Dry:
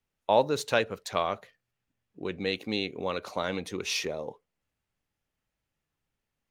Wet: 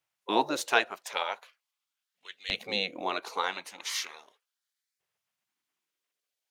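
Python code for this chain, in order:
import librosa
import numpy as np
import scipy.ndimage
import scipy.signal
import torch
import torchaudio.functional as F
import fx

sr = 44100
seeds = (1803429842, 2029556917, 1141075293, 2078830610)

y = fx.filter_lfo_highpass(x, sr, shape='saw_up', hz=0.4, low_hz=240.0, high_hz=3400.0, q=2.3)
y = fx.spec_gate(y, sr, threshold_db=-10, keep='weak')
y = F.gain(torch.from_numpy(y), 3.0).numpy()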